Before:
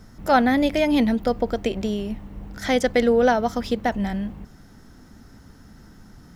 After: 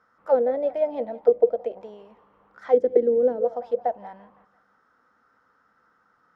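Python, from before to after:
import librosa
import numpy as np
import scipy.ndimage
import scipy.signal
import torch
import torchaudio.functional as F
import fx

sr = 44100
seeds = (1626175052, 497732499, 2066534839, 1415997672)

p1 = fx.peak_eq(x, sr, hz=500.0, db=12.0, octaves=0.31)
p2 = p1 + fx.echo_feedback(p1, sr, ms=170, feedback_pct=54, wet_db=-19.5, dry=0)
y = fx.auto_wah(p2, sr, base_hz=330.0, top_hz=1300.0, q=4.4, full_db=-7.0, direction='down')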